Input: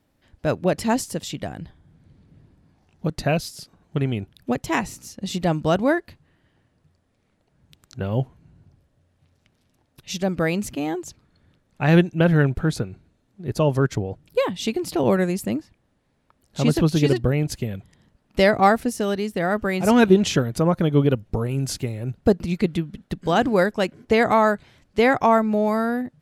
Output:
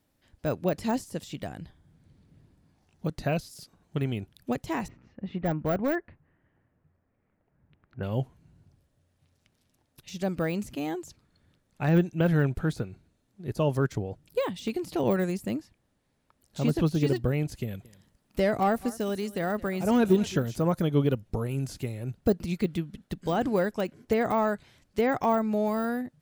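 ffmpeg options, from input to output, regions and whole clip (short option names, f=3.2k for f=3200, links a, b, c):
-filter_complex "[0:a]asettb=1/sr,asplit=3[a][b][c];[a]atrim=end=4.884[d];[b]atrim=start=4.88:end=8.03,asetpts=PTS-STARTPTS,afade=t=in:d=0.004:c=qsin,afade=t=out:st=3.146:d=0.004:c=qsin,lowpass=f=2.1k:w=0.5412,lowpass=f=2.1k:w=1.3066,asoftclip=type=hard:threshold=-14dB[e];[c]atrim=start=8.026[f];[d][e]acrossfade=d=0.004:c1=hsin:c2=qsin[g];[g][f]acrossfade=d=0.004:c1=qsin:c2=hsin,asettb=1/sr,asplit=3[h][i][j];[h]atrim=end=17.634[k];[i]atrim=start=17.63:end=20.83,asetpts=PTS-STARTPTS,afade=t=in:d=0.004:c=qsin,afade=t=out:st=3.196:d=0.004:c=qsin,highshelf=f=6.3k:g=6,aecho=1:1:217:0.0891,atrim=end_sample=141120[l];[j]atrim=start=20.826[m];[k][l]acrossfade=d=0.004:c1=hsin:c2=qsin[n];[n][m]acrossfade=d=0.004:c1=qsin:c2=hsin,deesser=1,highshelf=f=4.8k:g=7.5,volume=-6dB"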